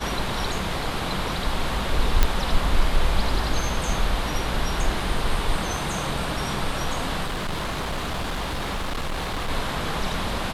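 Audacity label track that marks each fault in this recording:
2.230000	2.230000	pop -3 dBFS
7.240000	9.500000	clipped -24 dBFS

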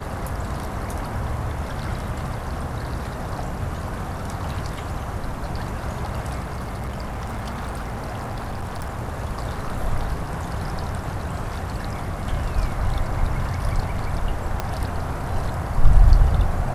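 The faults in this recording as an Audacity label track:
6.420000	8.990000	clipped -25 dBFS
14.600000	14.600000	pop -10 dBFS

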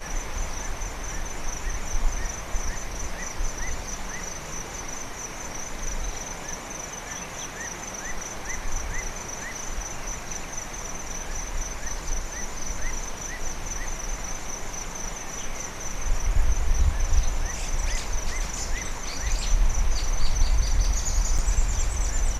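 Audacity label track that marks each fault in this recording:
21.380000	21.390000	dropout 6.1 ms

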